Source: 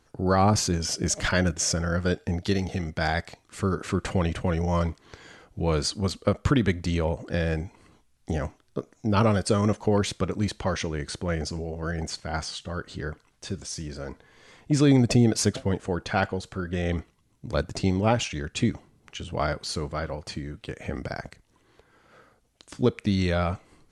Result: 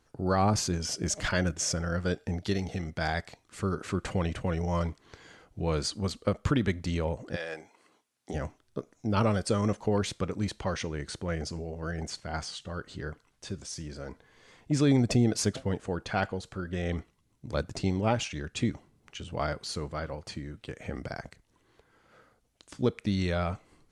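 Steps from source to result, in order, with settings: 7.35–8.33 s: high-pass 630 Hz -> 250 Hz 12 dB/octave; trim -4.5 dB

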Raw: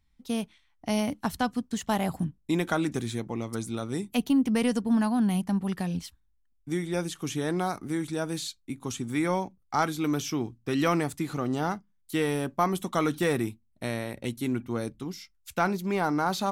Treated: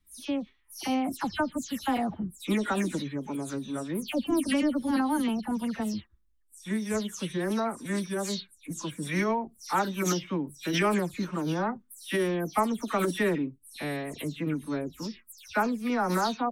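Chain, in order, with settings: delay that grows with frequency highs early, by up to 183 ms; formant-preserving pitch shift +3.5 st

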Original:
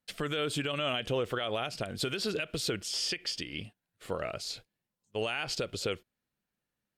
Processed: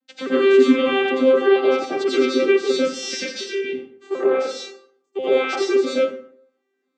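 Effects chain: vocoder on a broken chord bare fifth, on C4, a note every 259 ms; plate-style reverb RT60 0.59 s, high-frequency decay 0.65×, pre-delay 75 ms, DRR -8.5 dB; trim +7 dB

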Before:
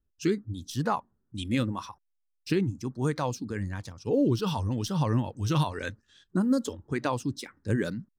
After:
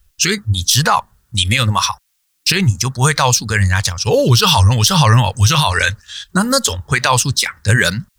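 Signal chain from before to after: amplifier tone stack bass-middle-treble 10-0-10; loudness maximiser +32.5 dB; trim -1 dB

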